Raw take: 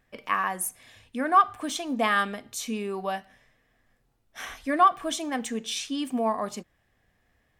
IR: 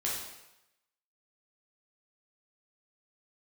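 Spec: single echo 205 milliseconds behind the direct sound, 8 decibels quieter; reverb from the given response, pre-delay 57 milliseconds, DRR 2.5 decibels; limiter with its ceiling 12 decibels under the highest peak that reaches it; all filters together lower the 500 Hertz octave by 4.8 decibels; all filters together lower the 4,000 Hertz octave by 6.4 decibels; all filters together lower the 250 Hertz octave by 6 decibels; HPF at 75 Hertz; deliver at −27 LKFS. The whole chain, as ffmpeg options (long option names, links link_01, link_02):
-filter_complex "[0:a]highpass=75,equalizer=frequency=250:width_type=o:gain=-5.5,equalizer=frequency=500:width_type=o:gain=-5.5,equalizer=frequency=4000:width_type=o:gain=-8.5,alimiter=limit=-22dB:level=0:latency=1,aecho=1:1:205:0.398,asplit=2[link_01][link_02];[1:a]atrim=start_sample=2205,adelay=57[link_03];[link_02][link_03]afir=irnorm=-1:irlink=0,volume=-7.5dB[link_04];[link_01][link_04]amix=inputs=2:normalize=0,volume=5dB"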